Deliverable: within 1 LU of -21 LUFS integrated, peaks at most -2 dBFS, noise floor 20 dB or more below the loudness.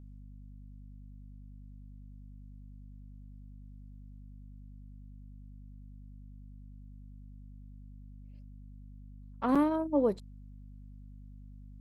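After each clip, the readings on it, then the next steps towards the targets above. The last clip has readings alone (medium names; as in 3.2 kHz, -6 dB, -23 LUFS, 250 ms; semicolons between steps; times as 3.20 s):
dropouts 1; longest dropout 5.9 ms; hum 50 Hz; highest harmonic 250 Hz; hum level -47 dBFS; loudness -30.0 LUFS; peak level -17.0 dBFS; loudness target -21.0 LUFS
-> interpolate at 9.55 s, 5.9 ms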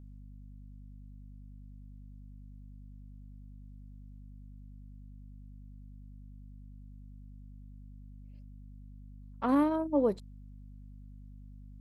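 dropouts 0; hum 50 Hz; highest harmonic 250 Hz; hum level -47 dBFS
-> hum notches 50/100/150/200/250 Hz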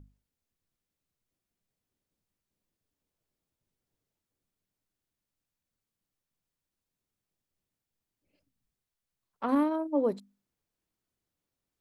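hum not found; loudness -29.5 LUFS; peak level -17.5 dBFS; loudness target -21.0 LUFS
-> trim +8.5 dB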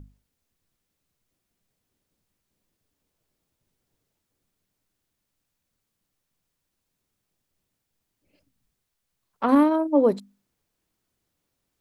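loudness -21.0 LUFS; peak level -9.0 dBFS; noise floor -80 dBFS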